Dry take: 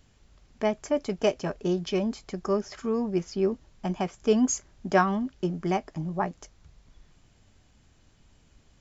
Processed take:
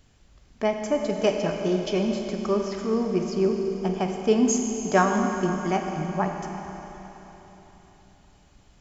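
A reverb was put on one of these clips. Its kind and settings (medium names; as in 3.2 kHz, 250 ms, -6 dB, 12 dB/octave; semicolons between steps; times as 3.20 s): Schroeder reverb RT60 3.9 s, combs from 32 ms, DRR 3 dB; trim +1.5 dB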